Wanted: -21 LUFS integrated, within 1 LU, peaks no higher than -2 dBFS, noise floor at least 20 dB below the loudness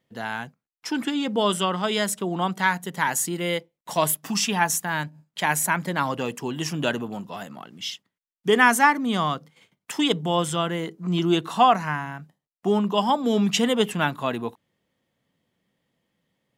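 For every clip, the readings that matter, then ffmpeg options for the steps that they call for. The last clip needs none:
loudness -24.0 LUFS; peak -2.5 dBFS; loudness target -21.0 LUFS
-> -af "volume=3dB,alimiter=limit=-2dB:level=0:latency=1"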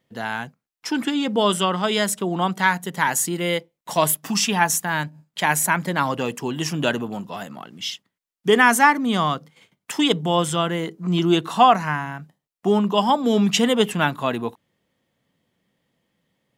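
loudness -21.0 LUFS; peak -2.0 dBFS; noise floor -84 dBFS

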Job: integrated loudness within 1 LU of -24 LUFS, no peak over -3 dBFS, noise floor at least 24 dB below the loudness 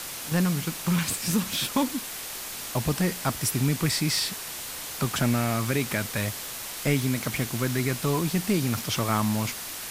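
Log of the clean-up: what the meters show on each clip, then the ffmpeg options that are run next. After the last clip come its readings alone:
noise floor -37 dBFS; noise floor target -51 dBFS; loudness -27.0 LUFS; peak -10.0 dBFS; loudness target -24.0 LUFS
-> -af "afftdn=nr=14:nf=-37"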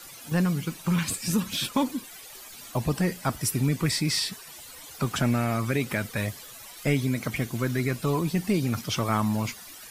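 noise floor -45 dBFS; noise floor target -52 dBFS
-> -af "afftdn=nr=7:nf=-45"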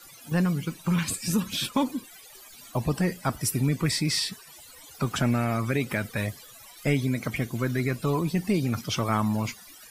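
noise floor -49 dBFS; noise floor target -52 dBFS
-> -af "afftdn=nr=6:nf=-49"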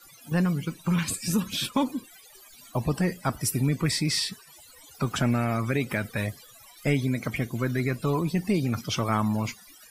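noise floor -52 dBFS; loudness -27.5 LUFS; peak -10.5 dBFS; loudness target -24.0 LUFS
-> -af "volume=3.5dB"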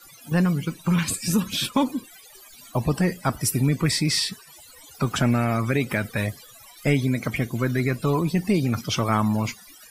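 loudness -24.0 LUFS; peak -7.0 dBFS; noise floor -48 dBFS

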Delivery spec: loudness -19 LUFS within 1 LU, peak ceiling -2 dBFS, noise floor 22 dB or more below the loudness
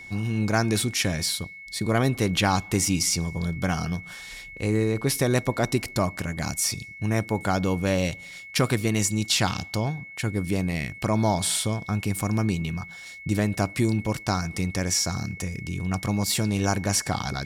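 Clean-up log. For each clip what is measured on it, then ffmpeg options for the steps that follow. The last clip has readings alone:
steady tone 2200 Hz; tone level -40 dBFS; loudness -25.5 LUFS; peak -9.0 dBFS; loudness target -19.0 LUFS
-> -af "bandreject=f=2.2k:w=30"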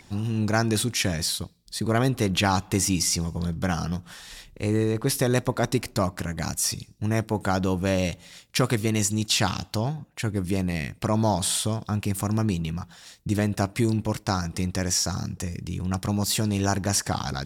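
steady tone none; loudness -25.5 LUFS; peak -9.0 dBFS; loudness target -19.0 LUFS
-> -af "volume=6.5dB"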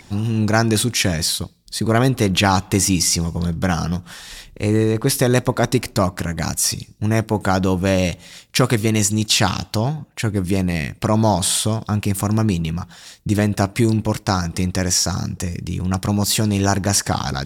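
loudness -19.0 LUFS; peak -2.5 dBFS; noise floor -48 dBFS

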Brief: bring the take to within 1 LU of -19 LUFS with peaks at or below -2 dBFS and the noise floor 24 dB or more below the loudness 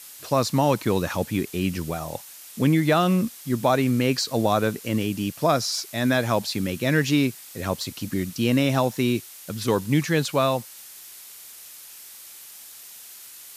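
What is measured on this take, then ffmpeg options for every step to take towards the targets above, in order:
noise floor -44 dBFS; noise floor target -48 dBFS; loudness -23.5 LUFS; peak -8.0 dBFS; loudness target -19.0 LUFS
-> -af "afftdn=nr=6:nf=-44"
-af "volume=4.5dB"

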